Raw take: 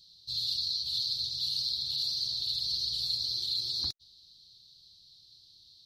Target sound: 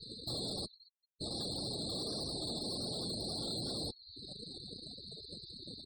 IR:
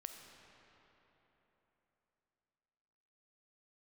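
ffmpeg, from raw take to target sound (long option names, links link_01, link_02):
-filter_complex "[0:a]asettb=1/sr,asplit=3[link_01][link_02][link_03];[link_01]atrim=end=1.904[link_04];[link_02]atrim=start=1.9:end=2.35,asetpts=PTS-STARTPTS,afade=type=in:duration=0.004:curve=qsin,afade=type=out:start_time=0.446:duration=0.004:curve=qsin,equalizer=frequency=13000:width=0.79:gain=15[link_05];[link_03]atrim=start=2.346[link_06];[link_04][link_05]acrossfade=duration=0.004:curve1=hsin:curve2=qsin[link_07];[link_07][link_06]acrossfade=duration=0.004:curve1=qsin:curve2=hsin,asplit=2[link_08][link_09];[1:a]atrim=start_sample=2205,afade=type=out:start_time=0.3:duration=0.01,atrim=end_sample=13671,highshelf=frequency=6500:gain=-6.5[link_10];[link_09][link_10]afir=irnorm=-1:irlink=0,volume=-9dB[link_11];[link_08][link_11]amix=inputs=2:normalize=0,acompressor=threshold=-46dB:ratio=10,asplit=3[link_12][link_13][link_14];[link_12]afade=type=out:start_time=0.65:duration=0.02[link_15];[link_13]asplit=3[link_16][link_17][link_18];[link_16]bandpass=frequency=300:width_type=q:width=8,volume=0dB[link_19];[link_17]bandpass=frequency=870:width_type=q:width=8,volume=-6dB[link_20];[link_18]bandpass=frequency=2240:width_type=q:width=8,volume=-9dB[link_21];[link_19][link_20][link_21]amix=inputs=3:normalize=0,afade=type=in:start_time=0.65:duration=0.02,afade=type=out:start_time=1.2:duration=0.02[link_22];[link_14]afade=type=in:start_time=1.2:duration=0.02[link_23];[link_15][link_22][link_23]amix=inputs=3:normalize=0,asplit=3[link_24][link_25][link_26];[link_24]afade=type=out:start_time=3.29:duration=0.02[link_27];[link_25]asplit=2[link_28][link_29];[link_29]adelay=25,volume=-7dB[link_30];[link_28][link_30]amix=inputs=2:normalize=0,afade=type=in:start_time=3.29:duration=0.02,afade=type=out:start_time=3.7:duration=0.02[link_31];[link_26]afade=type=in:start_time=3.7:duration=0.02[link_32];[link_27][link_31][link_32]amix=inputs=3:normalize=0,asplit=4[link_33][link_34][link_35][link_36];[link_34]adelay=222,afreqshift=-37,volume=-15.5dB[link_37];[link_35]adelay=444,afreqshift=-74,volume=-24.1dB[link_38];[link_36]adelay=666,afreqshift=-111,volume=-32.8dB[link_39];[link_33][link_37][link_38][link_39]amix=inputs=4:normalize=0,afftdn=noise_reduction=15:noise_floor=-58,aeval=exprs='0.0168*(cos(1*acos(clip(val(0)/0.0168,-1,1)))-cos(1*PI/2))+0.000237*(cos(2*acos(clip(val(0)/0.0168,-1,1)))-cos(2*PI/2))+0.00237*(cos(5*acos(clip(val(0)/0.0168,-1,1)))-cos(5*PI/2))+0.000335*(cos(7*acos(clip(val(0)/0.0168,-1,1)))-cos(7*PI/2))+0.00376*(cos(8*acos(clip(val(0)/0.0168,-1,1)))-cos(8*PI/2))':channel_layout=same,afftfilt=real='re*gte(hypot(re,im),0.00282)':imag='im*gte(hypot(re,im),0.00282)':win_size=1024:overlap=0.75,highpass=frequency=190:poles=1,tiltshelf=frequency=900:gain=8,bandreject=frequency=960:width=5.5,volume=11dB"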